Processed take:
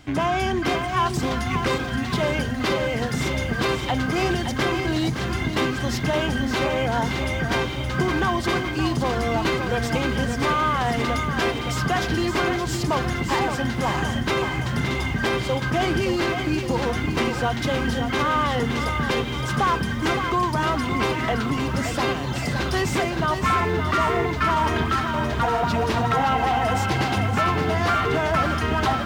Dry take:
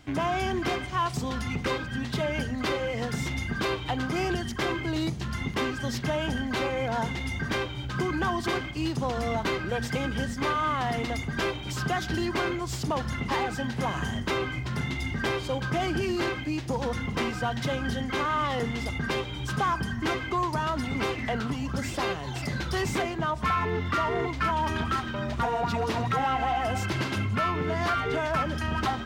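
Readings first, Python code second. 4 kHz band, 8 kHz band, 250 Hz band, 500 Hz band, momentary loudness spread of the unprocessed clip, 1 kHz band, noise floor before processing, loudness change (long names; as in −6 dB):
+6.0 dB, +6.0 dB, +6.0 dB, +6.0 dB, 4 LU, +6.0 dB, −35 dBFS, +6.0 dB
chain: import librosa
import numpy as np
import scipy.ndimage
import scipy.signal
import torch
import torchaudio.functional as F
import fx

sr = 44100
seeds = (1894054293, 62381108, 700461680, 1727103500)

y = fx.echo_crushed(x, sr, ms=568, feedback_pct=55, bits=9, wet_db=-7)
y = F.gain(torch.from_numpy(y), 5.0).numpy()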